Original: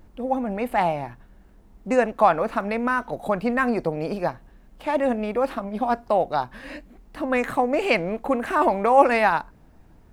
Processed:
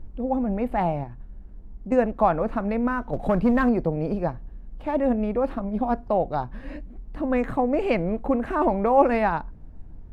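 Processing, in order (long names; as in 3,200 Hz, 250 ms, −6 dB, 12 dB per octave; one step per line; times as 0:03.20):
spectral tilt −3.5 dB per octave
0:01.03–0:01.92: downward compressor, threshold −29 dBFS, peak gain reduction 11.5 dB
0:03.13–0:03.69: leveller curve on the samples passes 1
level −4.5 dB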